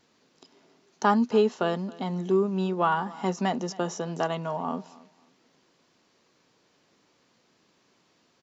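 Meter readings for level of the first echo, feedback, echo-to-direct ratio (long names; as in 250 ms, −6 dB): −21.5 dB, 24%, −21.5 dB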